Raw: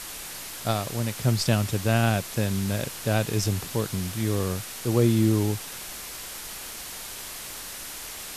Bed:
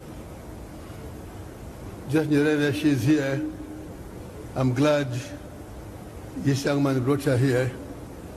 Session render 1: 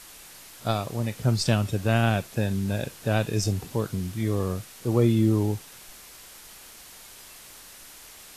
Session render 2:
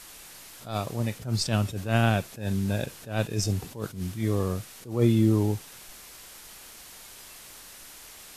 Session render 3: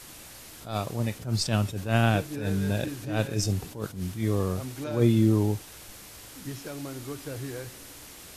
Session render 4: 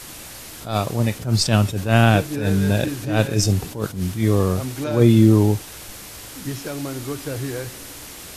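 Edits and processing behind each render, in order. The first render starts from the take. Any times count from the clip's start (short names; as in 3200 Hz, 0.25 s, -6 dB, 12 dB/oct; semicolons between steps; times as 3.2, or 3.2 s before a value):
noise print and reduce 9 dB
attack slew limiter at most 140 dB/s
add bed -15 dB
gain +8.5 dB; limiter -3 dBFS, peak gain reduction 1.5 dB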